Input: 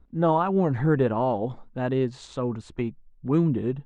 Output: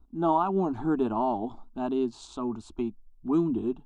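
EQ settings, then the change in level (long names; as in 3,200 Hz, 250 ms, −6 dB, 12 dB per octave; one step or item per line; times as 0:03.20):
phaser with its sweep stopped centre 510 Hz, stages 6
0.0 dB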